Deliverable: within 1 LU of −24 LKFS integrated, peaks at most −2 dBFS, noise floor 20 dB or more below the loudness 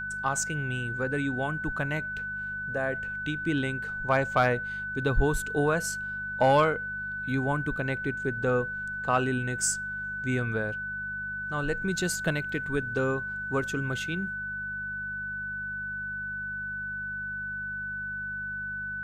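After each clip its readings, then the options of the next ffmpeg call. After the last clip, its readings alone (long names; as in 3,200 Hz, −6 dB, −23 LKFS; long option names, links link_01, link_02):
mains hum 50 Hz; hum harmonics up to 200 Hz; level of the hum −46 dBFS; interfering tone 1,500 Hz; level of the tone −32 dBFS; integrated loudness −29.5 LKFS; sample peak −12.5 dBFS; target loudness −24.0 LKFS
→ -af "bandreject=frequency=50:width_type=h:width=4,bandreject=frequency=100:width_type=h:width=4,bandreject=frequency=150:width_type=h:width=4,bandreject=frequency=200:width_type=h:width=4"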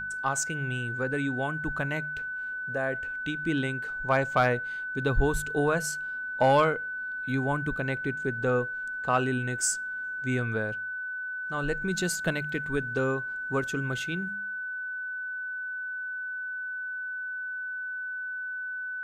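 mains hum none found; interfering tone 1,500 Hz; level of the tone −32 dBFS
→ -af "bandreject=frequency=1500:width=30"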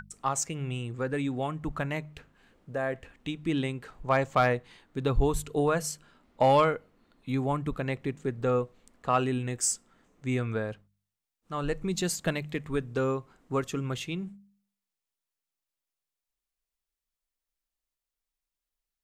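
interfering tone none found; integrated loudness −30.0 LKFS; sample peak −13.5 dBFS; target loudness −24.0 LKFS
→ -af "volume=6dB"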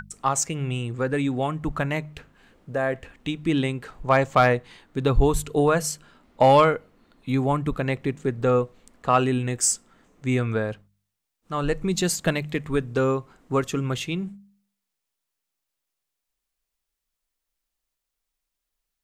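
integrated loudness −24.5 LKFS; sample peak −7.5 dBFS; background noise floor −83 dBFS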